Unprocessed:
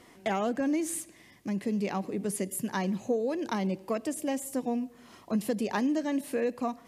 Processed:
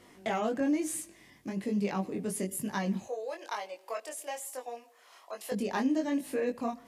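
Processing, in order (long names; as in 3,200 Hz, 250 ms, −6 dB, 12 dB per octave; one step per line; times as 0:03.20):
0:03.05–0:05.52: high-pass filter 560 Hz 24 dB per octave
chorus effect 1.1 Hz, delay 19.5 ms, depth 3.3 ms
level +1.5 dB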